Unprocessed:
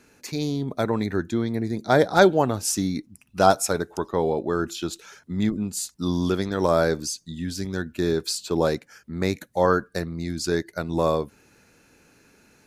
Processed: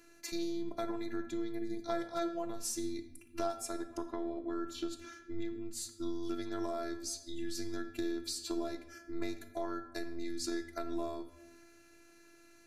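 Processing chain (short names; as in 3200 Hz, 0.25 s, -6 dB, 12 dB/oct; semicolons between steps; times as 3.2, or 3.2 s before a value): 3.69–6.23 high shelf 4700 Hz -7.5 dB; compressor 6:1, threshold -30 dBFS, peak gain reduction 18 dB; robotiser 339 Hz; reverb RT60 0.95 s, pre-delay 6 ms, DRR 7 dB; gain -3.5 dB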